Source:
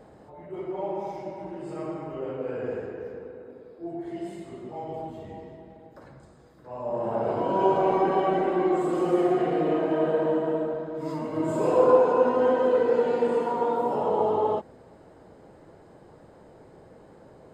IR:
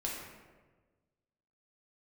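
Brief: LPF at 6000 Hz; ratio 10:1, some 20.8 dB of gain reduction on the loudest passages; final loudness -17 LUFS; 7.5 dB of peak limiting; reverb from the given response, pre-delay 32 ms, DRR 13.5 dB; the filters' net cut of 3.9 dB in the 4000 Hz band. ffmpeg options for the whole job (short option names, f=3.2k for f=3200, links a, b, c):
-filter_complex "[0:a]lowpass=6k,equalizer=f=4k:t=o:g=-5.5,acompressor=threshold=-36dB:ratio=10,alimiter=level_in=10.5dB:limit=-24dB:level=0:latency=1,volume=-10.5dB,asplit=2[a][b];[1:a]atrim=start_sample=2205,adelay=32[c];[b][c]afir=irnorm=-1:irlink=0,volume=-16dB[d];[a][d]amix=inputs=2:normalize=0,volume=26.5dB"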